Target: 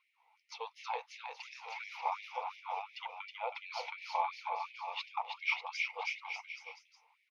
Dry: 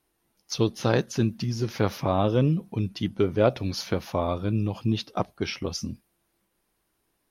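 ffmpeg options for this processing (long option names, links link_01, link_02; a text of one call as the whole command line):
ffmpeg -i in.wav -filter_complex "[0:a]areverse,acompressor=threshold=-32dB:ratio=5,areverse,lowpass=frequency=3500:poles=1,aecho=1:1:320|592|823.2|1020|1187:0.631|0.398|0.251|0.158|0.1,alimiter=level_in=0.5dB:limit=-24dB:level=0:latency=1:release=211,volume=-0.5dB,asplit=3[link_01][link_02][link_03];[link_01]bandpass=frequency=300:width_type=q:width=8,volume=0dB[link_04];[link_02]bandpass=frequency=870:width_type=q:width=8,volume=-6dB[link_05];[link_03]bandpass=frequency=2240:width_type=q:width=8,volume=-9dB[link_06];[link_04][link_05][link_06]amix=inputs=3:normalize=0,aeval=exprs='0.0631*sin(PI/2*1.78*val(0)/0.0631)':channel_layout=same,afftfilt=real='re*gte(b*sr/1024,440*pow(1700/440,0.5+0.5*sin(2*PI*2.8*pts/sr)))':imag='im*gte(b*sr/1024,440*pow(1700/440,0.5+0.5*sin(2*PI*2.8*pts/sr)))':win_size=1024:overlap=0.75,volume=14.5dB" out.wav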